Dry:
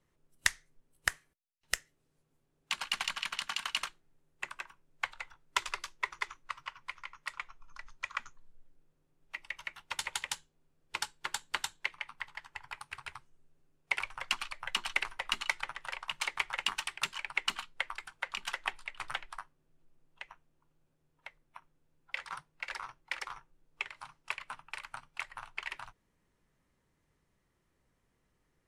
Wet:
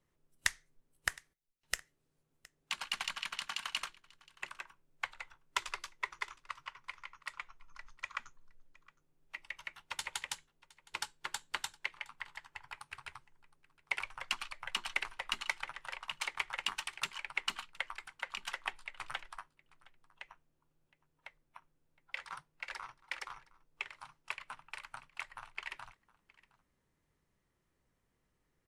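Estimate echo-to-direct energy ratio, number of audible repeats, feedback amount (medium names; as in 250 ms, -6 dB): -22.5 dB, 1, no regular repeats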